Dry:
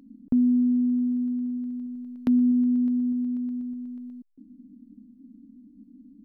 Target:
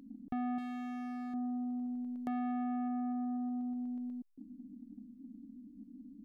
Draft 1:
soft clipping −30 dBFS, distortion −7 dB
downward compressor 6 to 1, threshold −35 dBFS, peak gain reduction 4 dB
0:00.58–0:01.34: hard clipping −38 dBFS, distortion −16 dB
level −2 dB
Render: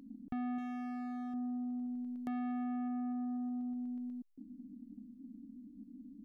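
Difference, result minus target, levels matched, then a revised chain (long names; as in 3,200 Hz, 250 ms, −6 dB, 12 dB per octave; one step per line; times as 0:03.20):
500 Hz band −2.5 dB
soft clipping −30 dBFS, distortion −7 dB
downward compressor 6 to 1, threshold −35 dBFS, peak gain reduction 4 dB
dynamic equaliser 670 Hz, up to +5 dB, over −52 dBFS, Q 0.72
0:00.58–0:01.34: hard clipping −38 dBFS, distortion −13 dB
level −2 dB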